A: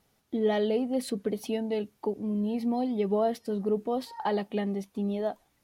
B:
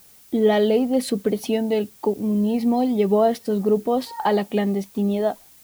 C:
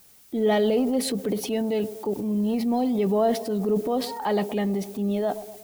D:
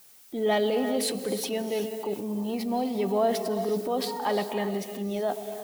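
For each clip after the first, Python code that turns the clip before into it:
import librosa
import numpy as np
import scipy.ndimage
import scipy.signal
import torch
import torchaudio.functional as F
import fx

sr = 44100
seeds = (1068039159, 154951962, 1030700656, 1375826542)

y1 = fx.dmg_noise_colour(x, sr, seeds[0], colour='blue', level_db=-59.0)
y1 = F.gain(torch.from_numpy(y1), 8.5).numpy()
y2 = fx.echo_wet_bandpass(y1, sr, ms=120, feedback_pct=56, hz=480.0, wet_db=-18.0)
y2 = fx.transient(y2, sr, attack_db=-4, sustain_db=6)
y2 = F.gain(torch.from_numpy(y2), -3.5).numpy()
y3 = fx.low_shelf(y2, sr, hz=300.0, db=-10.5)
y3 = fx.rev_gated(y3, sr, seeds[1], gate_ms=410, shape='rising', drr_db=8.5)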